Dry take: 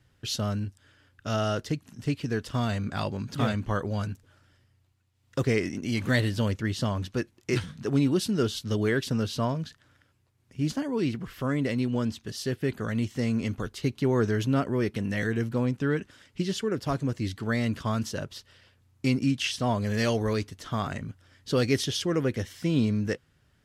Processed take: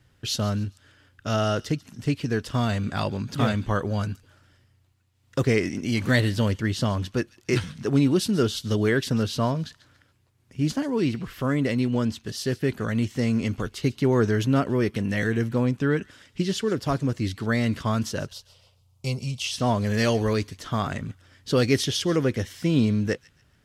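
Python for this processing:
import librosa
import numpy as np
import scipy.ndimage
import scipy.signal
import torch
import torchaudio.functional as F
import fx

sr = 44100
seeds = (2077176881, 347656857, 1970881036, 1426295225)

p1 = fx.fixed_phaser(x, sr, hz=700.0, stages=4, at=(18.28, 19.51), fade=0.02)
p2 = p1 + fx.echo_wet_highpass(p1, sr, ms=140, feedback_pct=31, hz=2700.0, wet_db=-17, dry=0)
y = F.gain(torch.from_numpy(p2), 3.5).numpy()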